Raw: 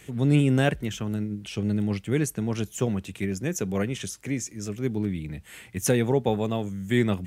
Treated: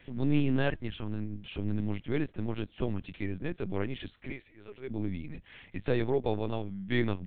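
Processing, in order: 4.31–4.9 HPF 470 Hz 12 dB/oct; LPC vocoder at 8 kHz pitch kept; gain -5.5 dB

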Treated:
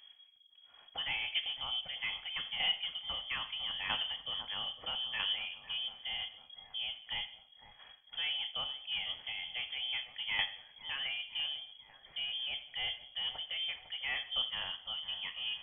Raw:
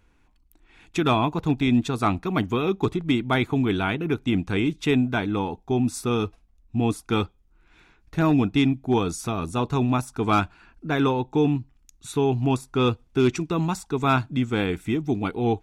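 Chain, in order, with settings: Wiener smoothing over 9 samples; bell 270 Hz -7.5 dB 0.78 oct; in parallel at +2 dB: compressor, threshold -36 dBFS, peak gain reduction 17.5 dB; on the sum: soft clip -15 dBFS, distortion -18 dB; chopper 0.77 Hz, depth 60%, duty 10%; thin delay 0.502 s, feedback 57%, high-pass 2400 Hz, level -8.5 dB; on a send at -7 dB: reverb RT60 0.50 s, pre-delay 3 ms; on the sum: inverted band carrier 3300 Hz; gain -7 dB

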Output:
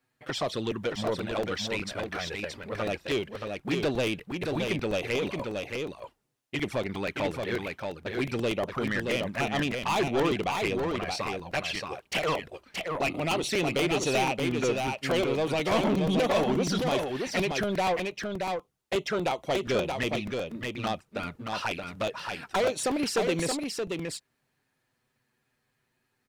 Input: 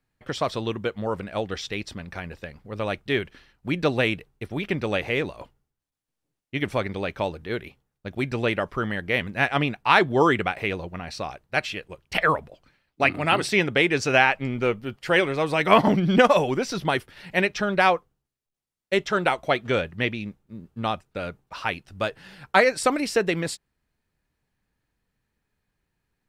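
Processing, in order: HPF 230 Hz 6 dB/oct; in parallel at +1 dB: compressor 16:1, threshold -32 dBFS, peak gain reduction 21.5 dB; on the sum: overloaded stage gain 10 dB; envelope flanger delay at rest 8 ms, full sweep at -20 dBFS; soft clip -22 dBFS, distortion -10 dB; on a send: echo 0.625 s -4.5 dB; on the sum: crackling interface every 0.12 s, samples 128, repeat, from 0.71

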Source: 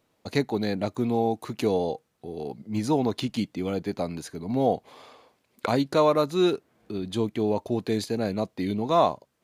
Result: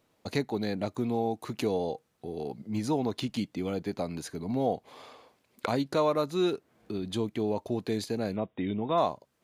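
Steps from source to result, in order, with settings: in parallel at +2.5 dB: compressor, threshold -32 dBFS, peak gain reduction 15.5 dB; 8.36–8.98 on the sum: brick-wall FIR low-pass 3800 Hz; gain -7.5 dB

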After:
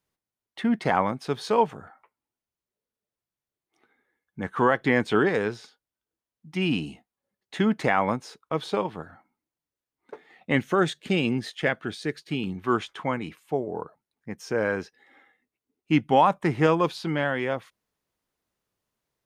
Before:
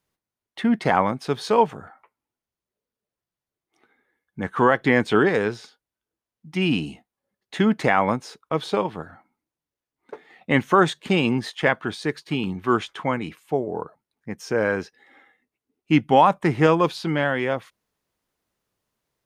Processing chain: 10.55–12.58 bell 990 Hz -9.5 dB 0.6 oct; gain -3.5 dB

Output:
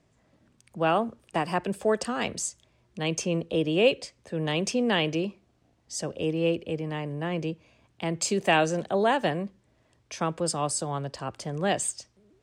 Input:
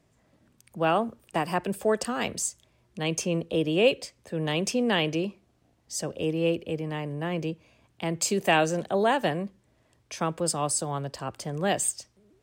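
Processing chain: LPF 8600 Hz 12 dB/oct

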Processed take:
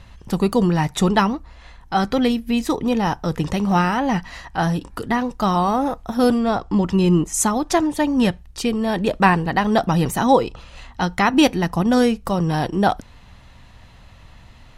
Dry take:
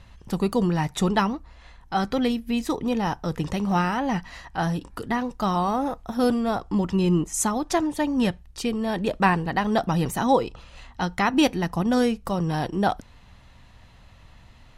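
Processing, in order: 6.38–6.86 LPF 7600 Hz 12 dB/oct; gain +5 dB

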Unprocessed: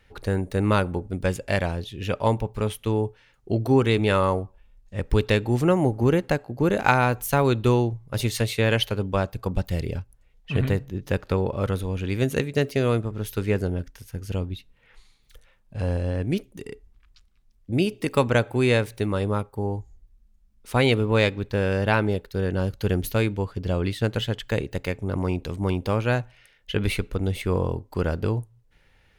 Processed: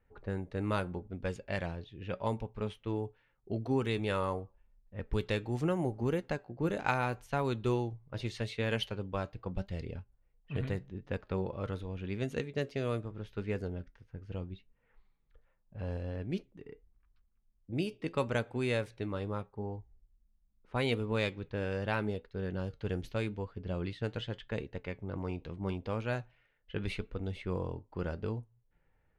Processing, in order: low-pass opened by the level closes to 1300 Hz, open at -15.5 dBFS; flange 0.81 Hz, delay 4 ms, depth 2.9 ms, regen +77%; gain -7 dB

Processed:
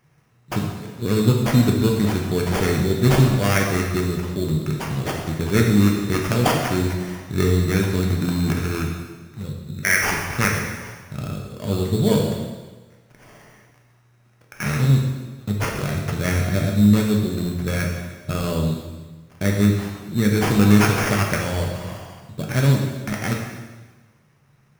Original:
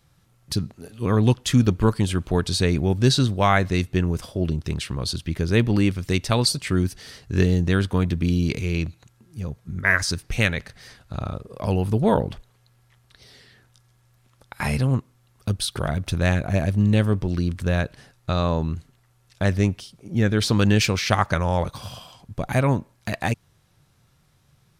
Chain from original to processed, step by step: HPF 110 Hz; bell 860 Hz -12.5 dB 1.1 oct; sample-rate reducer 3900 Hz, jitter 0%; plate-style reverb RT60 1.3 s, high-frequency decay 1×, DRR -0.5 dB; gain +1.5 dB

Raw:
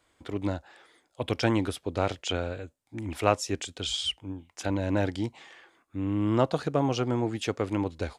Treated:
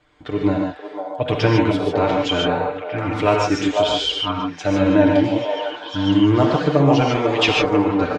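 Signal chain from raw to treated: in parallel at 0 dB: limiter -17.5 dBFS, peak gain reduction 10 dB; 7.01–7.49 on the sum: weighting filter D; on a send: delay with a stepping band-pass 0.5 s, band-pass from 720 Hz, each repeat 0.7 oct, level -1 dB; on the sum: flange 0.68 Hz, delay 0.3 ms, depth 3.7 ms, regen +65%; air absorption 150 m; comb 6.7 ms, depth 77%; non-linear reverb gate 0.17 s rising, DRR 0.5 dB; gain +6 dB

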